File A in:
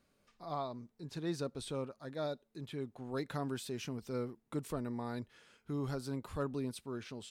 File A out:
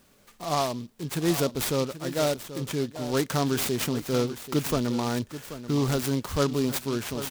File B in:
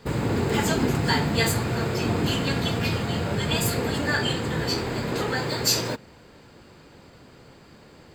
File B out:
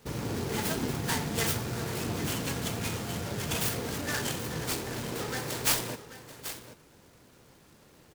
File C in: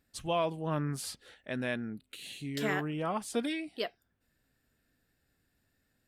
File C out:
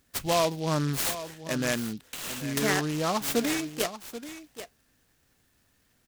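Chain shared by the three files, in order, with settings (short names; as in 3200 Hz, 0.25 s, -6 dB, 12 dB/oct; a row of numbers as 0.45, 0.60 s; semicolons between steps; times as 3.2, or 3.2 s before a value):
high shelf 4900 Hz +11 dB; echo 0.784 s -13 dB; noise-modulated delay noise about 3900 Hz, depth 0.062 ms; normalise peaks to -12 dBFS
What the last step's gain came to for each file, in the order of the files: +12.5, -9.0, +5.5 dB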